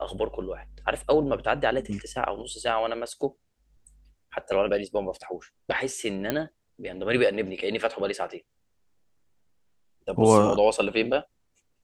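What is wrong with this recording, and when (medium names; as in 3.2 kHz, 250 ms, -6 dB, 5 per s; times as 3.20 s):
6.30 s: pop -11 dBFS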